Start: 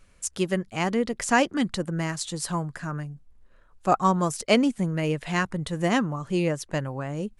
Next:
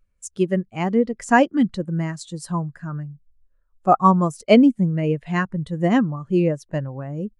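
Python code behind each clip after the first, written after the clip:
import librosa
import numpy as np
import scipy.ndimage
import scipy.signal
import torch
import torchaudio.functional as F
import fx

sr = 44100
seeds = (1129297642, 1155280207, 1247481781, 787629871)

y = fx.spectral_expand(x, sr, expansion=1.5)
y = F.gain(torch.from_numpy(y), 4.5).numpy()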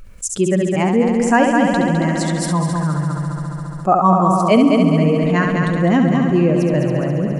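y = fx.echo_heads(x, sr, ms=69, heads='first and third', feedback_pct=67, wet_db=-7)
y = fx.env_flatten(y, sr, amount_pct=50)
y = F.gain(torch.from_numpy(y), -1.0).numpy()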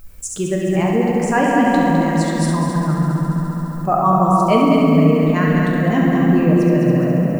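y = fx.dmg_noise_colour(x, sr, seeds[0], colour='violet', level_db=-50.0)
y = fx.room_shoebox(y, sr, seeds[1], volume_m3=200.0, walls='hard', distance_m=0.5)
y = F.gain(torch.from_numpy(y), -4.0).numpy()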